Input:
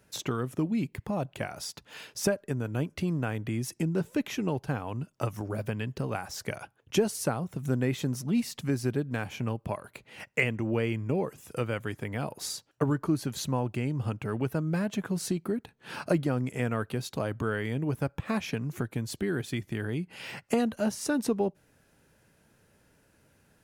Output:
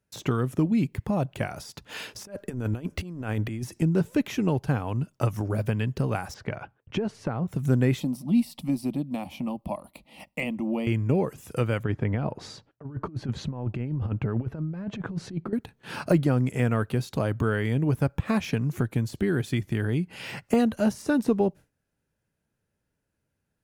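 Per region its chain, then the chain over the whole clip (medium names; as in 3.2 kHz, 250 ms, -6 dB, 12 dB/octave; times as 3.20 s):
1.89–3.82 s: compressor with a negative ratio -34 dBFS, ratio -0.5 + peaking EQ 140 Hz -12.5 dB 0.24 oct
6.34–7.48 s: low-pass 2.4 kHz + compression 5:1, threshold -28 dBFS
8.00–10.87 s: peaking EQ 6.6 kHz -12.5 dB 0.46 oct + static phaser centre 420 Hz, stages 6
11.83–15.53 s: compressor with a negative ratio -33 dBFS, ratio -0.5 + tape spacing loss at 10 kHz 28 dB
whole clip: gate with hold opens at -51 dBFS; de-esser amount 95%; bass shelf 180 Hz +6.5 dB; trim +3 dB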